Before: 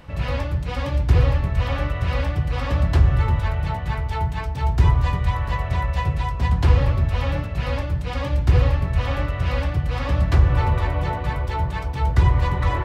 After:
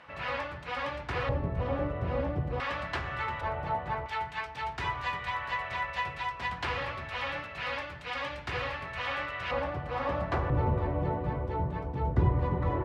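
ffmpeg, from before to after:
ffmpeg -i in.wav -af "asetnsamples=nb_out_samples=441:pad=0,asendcmd='1.29 bandpass f 390;2.6 bandpass f 1800;3.41 bandpass f 730;4.06 bandpass f 2000;9.51 bandpass f 790;10.5 bandpass f 310',bandpass=frequency=1500:width_type=q:width=0.84:csg=0" out.wav

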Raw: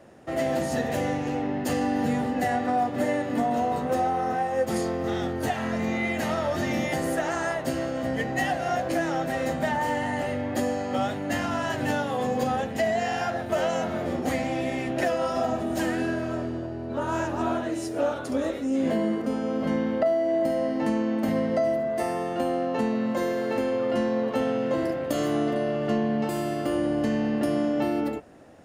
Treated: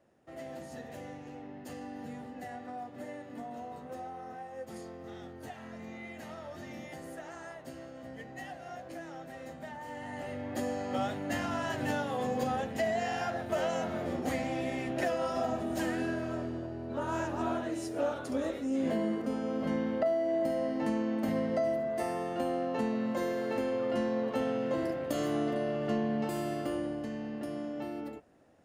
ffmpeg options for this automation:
ffmpeg -i in.wav -af "volume=-6dB,afade=type=in:start_time=9.84:duration=1.06:silence=0.266073,afade=type=out:start_time=26.55:duration=0.5:silence=0.446684" out.wav

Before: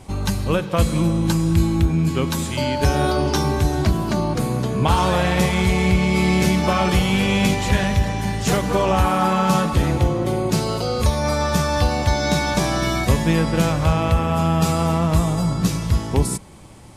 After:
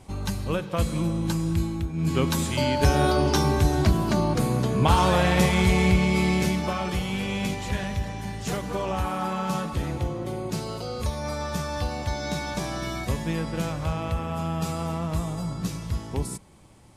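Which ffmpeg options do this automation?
ffmpeg -i in.wav -af "volume=4.5dB,afade=type=out:start_time=1.49:duration=0.44:silence=0.473151,afade=type=in:start_time=1.93:duration=0.22:silence=0.266073,afade=type=out:start_time=5.8:duration=1:silence=0.398107" out.wav

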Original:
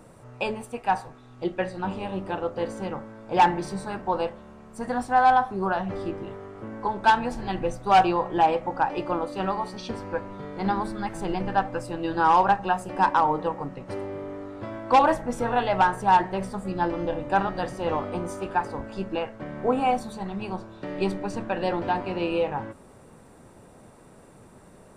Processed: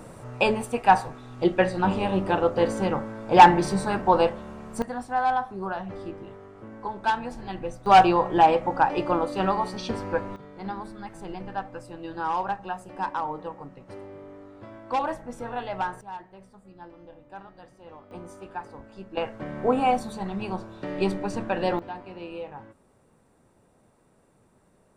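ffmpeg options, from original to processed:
ffmpeg -i in.wav -af "asetnsamples=nb_out_samples=441:pad=0,asendcmd='4.82 volume volume -5.5dB;7.86 volume volume 3dB;10.36 volume volume -8.5dB;16.01 volume volume -20dB;18.11 volume volume -10.5dB;19.17 volume volume 1dB;21.79 volume volume -11.5dB',volume=6.5dB" out.wav

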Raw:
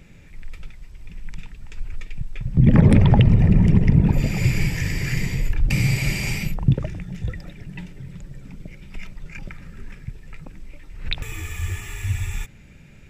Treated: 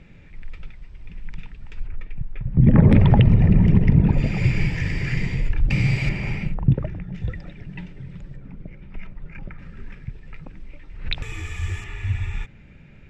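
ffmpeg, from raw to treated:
ffmpeg -i in.wav -af "asetnsamples=nb_out_samples=441:pad=0,asendcmd='1.87 lowpass f 1900;2.9 lowpass f 3600;6.09 lowpass f 2000;7.14 lowpass f 3600;8.36 lowpass f 1800;9.59 lowpass f 3600;11.1 lowpass f 5800;11.84 lowpass f 3000',lowpass=3600" out.wav

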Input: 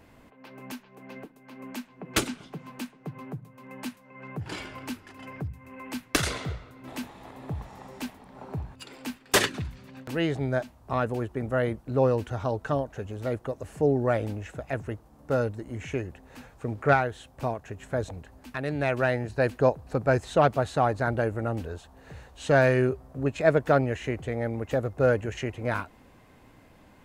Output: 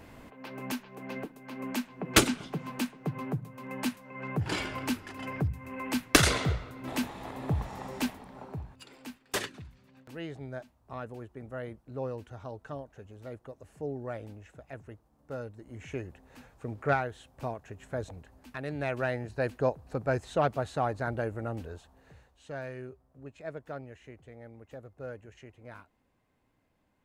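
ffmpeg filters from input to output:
ffmpeg -i in.wav -af "volume=11.5dB,afade=type=out:start_time=8.06:duration=0.46:silence=0.334965,afade=type=out:start_time=8.52:duration=1.05:silence=0.398107,afade=type=in:start_time=15.51:duration=0.48:silence=0.446684,afade=type=out:start_time=21.75:duration=0.68:silence=0.223872" out.wav

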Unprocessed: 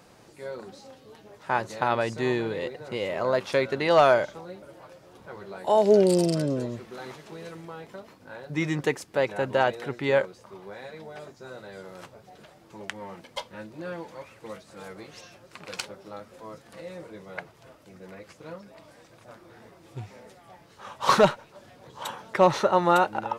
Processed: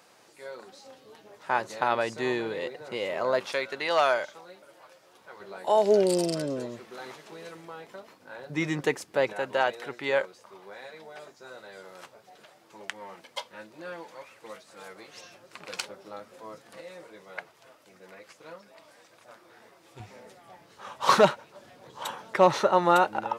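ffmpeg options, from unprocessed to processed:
ffmpeg -i in.wav -af "asetnsamples=nb_out_samples=441:pad=0,asendcmd='0.86 highpass f 340;3.52 highpass f 1100;5.4 highpass f 410;8.39 highpass f 190;9.33 highpass f 630;15.15 highpass f 290;16.81 highpass f 700;20 highpass f 190',highpass=frequency=750:poles=1" out.wav

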